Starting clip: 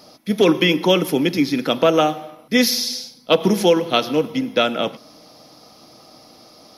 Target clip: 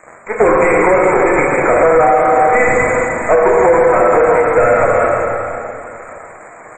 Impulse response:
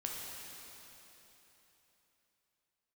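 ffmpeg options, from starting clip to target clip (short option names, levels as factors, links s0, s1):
-filter_complex "[0:a]asettb=1/sr,asplit=3[s0][s1][s2];[s0]atrim=end=1.434[s3];[s1]atrim=start=1.43:end=4.07,asetpts=PTS-STARTPTS,afade=t=in:d=0.004:c=qsin,afade=t=out:st=2.636:d=0.004:c=qsin,aeval=exprs='val(0)+0.5*0.0376*sgn(val(0))':c=same[s4];[s2]atrim=start=4.066[s5];[s3][s4]acrossfade=d=0.004:c1=hsin:c2=qsin[s6];[s6][s5]acrossfade=d=0.004:c1=qsin:c2=hsin,highpass=f=430:w=0.5412,highpass=f=430:w=1.3066,acrusher=bits=4:dc=4:mix=0:aa=0.000001,asplit=2[s7][s8];[s8]highpass=f=720:p=1,volume=14.1,asoftclip=type=tanh:threshold=0.841[s9];[s7][s9]amix=inputs=2:normalize=0,lowpass=f=1300:p=1,volume=0.501,asuperstop=centerf=4100:order=20:qfactor=0.89,asplit=2[s10][s11];[s11]adelay=35,volume=0.2[s12];[s10][s12]amix=inputs=2:normalize=0,asplit=2[s13][s14];[s14]adelay=160,highpass=300,lowpass=3400,asoftclip=type=hard:threshold=0.282,volume=0.0708[s15];[s13][s15]amix=inputs=2:normalize=0[s16];[1:a]atrim=start_sample=2205,asetrate=57330,aresample=44100[s17];[s16][s17]afir=irnorm=-1:irlink=0,alimiter=level_in=3.98:limit=0.891:release=50:level=0:latency=1,volume=0.891" -ar 44100 -c:a libmp3lame -b:a 32k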